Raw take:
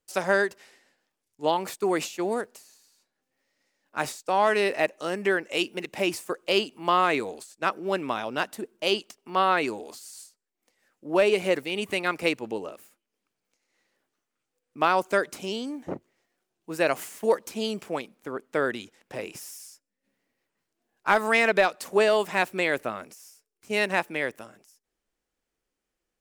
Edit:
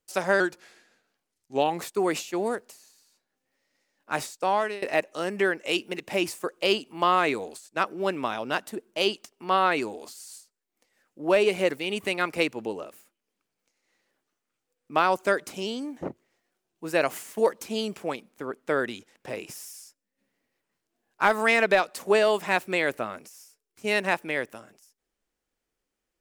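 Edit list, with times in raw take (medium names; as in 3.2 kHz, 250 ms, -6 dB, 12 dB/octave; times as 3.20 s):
0.40–1.68 s: speed 90%
4.32–4.68 s: fade out, to -22.5 dB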